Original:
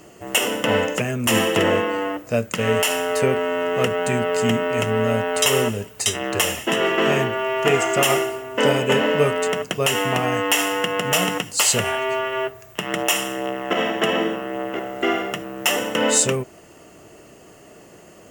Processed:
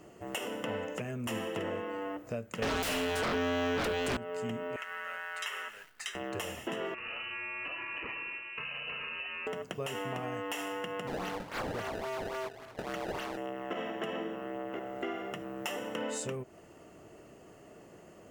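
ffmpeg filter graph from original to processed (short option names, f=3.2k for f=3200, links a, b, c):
-filter_complex "[0:a]asettb=1/sr,asplit=3[a][b][c];[a]atrim=end=2.624[d];[b]atrim=start=2.62:end=4.17,asetpts=PTS-STARTPTS,afade=t=in:d=0.004:c=qsin,afade=t=out:st=1.546:d=0.004:c=qsin,highpass=150,bass=f=250:g=-7,treble=f=4k:g=-3,aeval=exprs='0.562*sin(PI/2*7.94*val(0)/0.562)':c=same[e];[c]atrim=start=4.166[f];[d][e]acrossfade=d=0.004:c1=hsin:c2=qsin[g];[g][f]acrossfade=d=0.004:c1=qsin:c2=hsin,asettb=1/sr,asplit=3[h][i][j];[h]atrim=end=4.764[k];[i]atrim=start=4.76:end=6.15,asetpts=PTS-STARTPTS,afade=t=in:d=0.004:c=qsin,afade=t=out:st=1.386:d=0.004:c=qsin,highpass=f=1.6k:t=q:w=2.3,highshelf=f=3.4k:g=-8.5,acrusher=bits=8:dc=4:mix=0:aa=0.000001[l];[j]atrim=start=6.146[m];[k][l]acrossfade=d=0.004:c1=hsin:c2=qsin[n];[n][m]acrossfade=d=0.004:c1=qsin:c2=hsin,asettb=1/sr,asplit=3[o][p][q];[o]atrim=end=6.944[r];[p]atrim=start=6.94:end=9.47,asetpts=PTS-STARTPTS,afade=t=in:d=0.004:c=qsin,afade=t=out:st=2.526:d=0.004:c=qsin,bandreject=f=1.6k:w=26,lowpass=f=2.6k:t=q:w=0.5098,lowpass=f=2.6k:t=q:w=0.6013,lowpass=f=2.6k:t=q:w=0.9,lowpass=f=2.6k:t=q:w=2.563,afreqshift=-3100,acompressor=threshold=-24dB:ratio=6:attack=3.2:release=140:knee=1:detection=peak[s];[q]atrim=start=9.466[t];[r][s]acrossfade=d=0.004:c1=hsin:c2=qsin[u];[u][t]acrossfade=d=0.004:c1=qsin:c2=hsin,asettb=1/sr,asplit=3[v][w][x];[v]atrim=end=11.074[y];[w]atrim=start=11.07:end=13.37,asetpts=PTS-STARTPTS,afade=t=in:d=0.004:c=qsin,afade=t=out:st=2.296:d=0.004:c=qsin,acrusher=samples=23:mix=1:aa=0.000001:lfo=1:lforange=36.8:lforate=3.6,asoftclip=type=hard:threshold=-15dB,asplit=2[z][aa];[aa]highpass=f=720:p=1,volume=12dB,asoftclip=type=tanh:threshold=-15dB[ab];[z][ab]amix=inputs=2:normalize=0,lowpass=f=6.8k:p=1,volume=-6dB[ac];[x]atrim=start=13.366[ad];[y][ac]acrossfade=d=0.004:c1=hsin:c2=qsin[ae];[ae][ad]acrossfade=d=0.004:c1=qsin:c2=hsin,highshelf=f=2.5k:g=-8,acompressor=threshold=-29dB:ratio=3,volume=-7dB"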